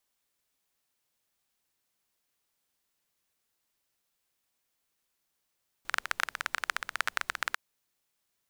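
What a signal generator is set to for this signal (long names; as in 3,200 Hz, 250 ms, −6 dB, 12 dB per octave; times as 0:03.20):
rain-like ticks over hiss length 1.70 s, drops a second 17, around 1,500 Hz, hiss −26.5 dB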